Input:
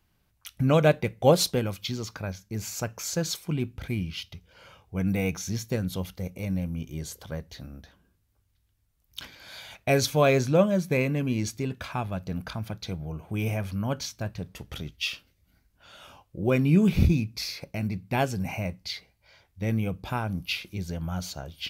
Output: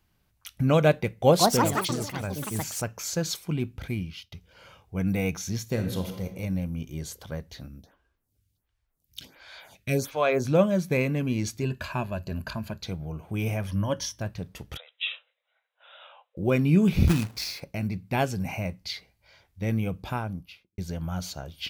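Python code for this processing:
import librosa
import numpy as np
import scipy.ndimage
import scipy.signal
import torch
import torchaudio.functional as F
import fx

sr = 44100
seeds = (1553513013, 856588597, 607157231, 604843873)

y = fx.echo_pitch(x, sr, ms=199, semitones=5, count=3, db_per_echo=-3.0, at=(1.11, 3.12))
y = fx.reverb_throw(y, sr, start_s=5.62, length_s=0.63, rt60_s=0.88, drr_db=4.5)
y = fx.stagger_phaser(y, sr, hz=1.4, at=(7.67, 10.44), fade=0.02)
y = fx.ripple_eq(y, sr, per_octave=1.4, db=10, at=(11.61, 12.82))
y = fx.ripple_eq(y, sr, per_octave=1.2, db=11, at=(13.67, 14.21))
y = fx.brickwall_bandpass(y, sr, low_hz=460.0, high_hz=4000.0, at=(14.77, 16.37))
y = fx.quant_companded(y, sr, bits=4, at=(17.07, 17.59), fade=0.02)
y = fx.studio_fade_out(y, sr, start_s=20.04, length_s=0.74)
y = fx.edit(y, sr, fx.fade_out_to(start_s=3.78, length_s=0.54, curve='qsin', floor_db=-16.5), tone=tone)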